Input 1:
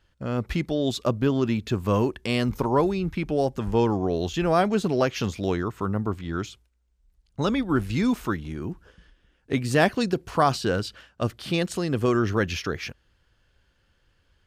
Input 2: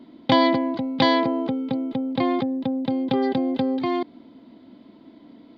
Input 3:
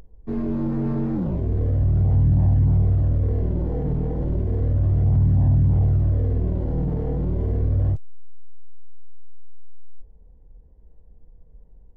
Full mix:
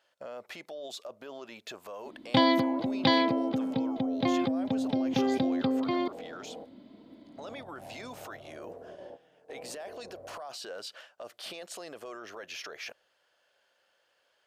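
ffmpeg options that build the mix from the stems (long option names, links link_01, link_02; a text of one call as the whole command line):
ffmpeg -i stem1.wav -i stem2.wav -i stem3.wav -filter_complex "[0:a]acompressor=threshold=-29dB:ratio=6,volume=-0.5dB,asplit=2[link_01][link_02];[1:a]adelay=2050,volume=-2.5dB[link_03];[2:a]lowpass=1300,adelay=2450,volume=-9dB[link_04];[link_02]apad=whole_len=635621[link_05];[link_04][link_05]sidechaingate=range=-19dB:threshold=-55dB:ratio=16:detection=peak[link_06];[link_01][link_06]amix=inputs=2:normalize=0,highpass=frequency=620:width_type=q:width=3.4,alimiter=level_in=6.5dB:limit=-24dB:level=0:latency=1:release=10,volume=-6.5dB,volume=0dB[link_07];[link_03][link_07]amix=inputs=2:normalize=0,equalizer=frequency=690:width_type=o:width=2.9:gain=-4" out.wav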